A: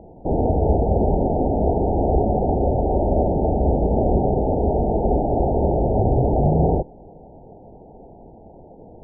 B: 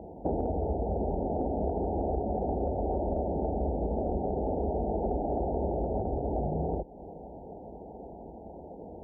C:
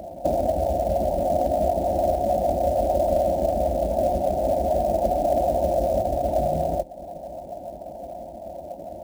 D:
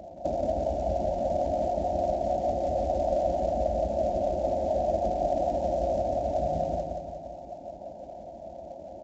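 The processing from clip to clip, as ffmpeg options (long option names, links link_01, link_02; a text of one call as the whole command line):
ffmpeg -i in.wav -af "highpass=frequency=41:width=0.5412,highpass=frequency=41:width=1.3066,acompressor=threshold=-26dB:ratio=10,equalizer=frequency=120:width=3.9:gain=-13.5" out.wav
ffmpeg -i in.wav -filter_complex "[0:a]acrossover=split=560[link_01][link_02];[link_01]aeval=exprs='val(0)*(1-0.5/2+0.5/2*cos(2*PI*6.7*n/s))':channel_layout=same[link_03];[link_02]aeval=exprs='val(0)*(1-0.5/2-0.5/2*cos(2*PI*6.7*n/s))':channel_layout=same[link_04];[link_03][link_04]amix=inputs=2:normalize=0,superequalizer=7b=0.398:8b=3.98,acrusher=bits=6:mode=log:mix=0:aa=0.000001,volume=4.5dB" out.wav
ffmpeg -i in.wav -af "aecho=1:1:175|350|525|700|875|1050|1225:0.596|0.328|0.18|0.0991|0.0545|0.03|0.0165,aresample=16000,aresample=44100,volume=-7dB" out.wav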